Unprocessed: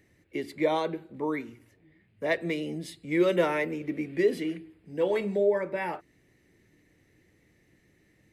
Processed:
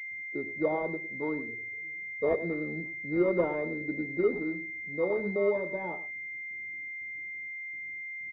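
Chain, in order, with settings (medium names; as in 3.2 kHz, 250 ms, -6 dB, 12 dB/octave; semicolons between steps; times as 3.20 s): 1.47–2.41 s: peaking EQ 440 Hz +14.5 dB 0.28 oct; gate with hold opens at -54 dBFS; level-controlled noise filter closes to 660 Hz, open at -22.5 dBFS; on a send: delay 105 ms -14 dB; on the sum: class-D stage that switches slowly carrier 2.1 kHz; trim -2.5 dB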